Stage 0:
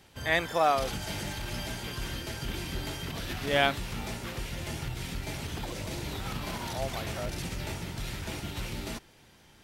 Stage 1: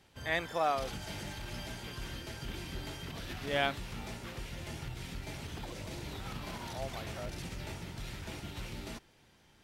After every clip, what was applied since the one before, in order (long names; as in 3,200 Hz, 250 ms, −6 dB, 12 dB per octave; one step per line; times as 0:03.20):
high-shelf EQ 9,100 Hz −5 dB
level −6 dB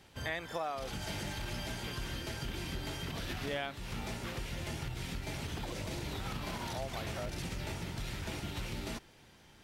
downward compressor 6 to 1, threshold −39 dBFS, peak gain reduction 13.5 dB
level +4.5 dB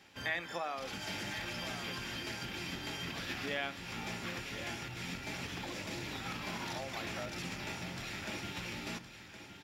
single-tap delay 1,066 ms −10.5 dB
convolution reverb RT60 0.40 s, pre-delay 3 ms, DRR 12.5 dB
level −3.5 dB